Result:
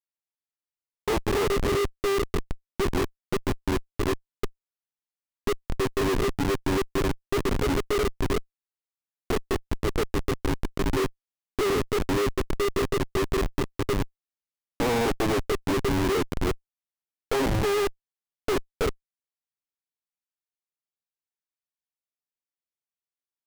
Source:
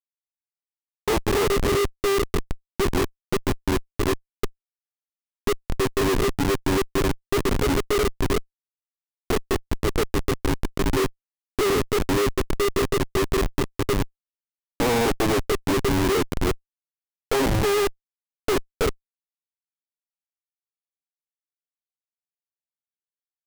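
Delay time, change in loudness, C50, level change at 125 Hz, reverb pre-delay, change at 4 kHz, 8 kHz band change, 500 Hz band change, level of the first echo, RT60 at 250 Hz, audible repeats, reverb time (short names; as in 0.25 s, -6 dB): none, -3.0 dB, none, -3.0 dB, none, -4.0 dB, -5.5 dB, -3.0 dB, none, none, none, none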